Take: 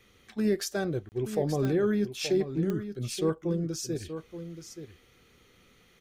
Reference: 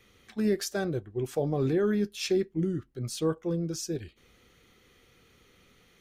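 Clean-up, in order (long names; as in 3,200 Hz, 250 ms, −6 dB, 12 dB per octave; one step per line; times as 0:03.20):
click removal
repair the gap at 0:01.09, 29 ms
echo removal 877 ms −10.5 dB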